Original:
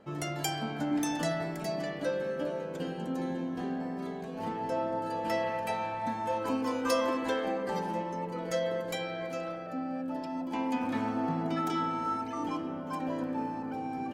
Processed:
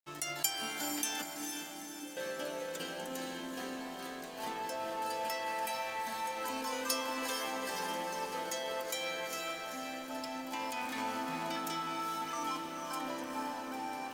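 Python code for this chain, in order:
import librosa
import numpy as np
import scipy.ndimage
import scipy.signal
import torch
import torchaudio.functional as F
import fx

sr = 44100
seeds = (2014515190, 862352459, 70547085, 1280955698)

p1 = fx.tilt_eq(x, sr, slope=4.5)
p2 = fx.over_compress(p1, sr, threshold_db=-36.0, ratio=-0.5)
p3 = p1 + F.gain(torch.from_numpy(p2), 0.5).numpy()
p4 = np.sign(p3) * np.maximum(np.abs(p3) - 10.0 ** (-44.0 / 20.0), 0.0)
p5 = fx.formant_cascade(p4, sr, vowel='u', at=(1.22, 2.17))
p6 = p5 + fx.echo_diffused(p5, sr, ms=451, feedback_pct=53, wet_db=-5, dry=0)
y = F.gain(torch.from_numpy(p6), -8.5).numpy()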